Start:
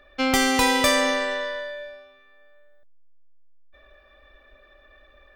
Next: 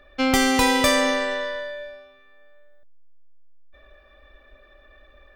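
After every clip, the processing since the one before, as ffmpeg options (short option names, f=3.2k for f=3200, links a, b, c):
-af "lowshelf=f=380:g=4"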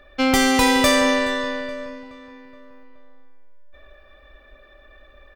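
-filter_complex "[0:a]asplit=2[a][b];[b]aeval=exprs='0.168*(abs(mod(val(0)/0.168+3,4)-2)-1)':c=same,volume=-9dB[c];[a][c]amix=inputs=2:normalize=0,asplit=2[d][e];[e]adelay=423,lowpass=f=3.8k:p=1,volume=-15dB,asplit=2[f][g];[g]adelay=423,lowpass=f=3.8k:p=1,volume=0.51,asplit=2[h][i];[i]adelay=423,lowpass=f=3.8k:p=1,volume=0.51,asplit=2[j][k];[k]adelay=423,lowpass=f=3.8k:p=1,volume=0.51,asplit=2[l][m];[m]adelay=423,lowpass=f=3.8k:p=1,volume=0.51[n];[d][f][h][j][l][n]amix=inputs=6:normalize=0"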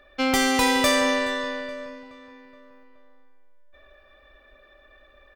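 -af "lowshelf=f=200:g=-6,volume=-3dB"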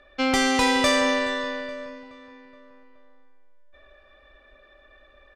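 -af "lowpass=8k"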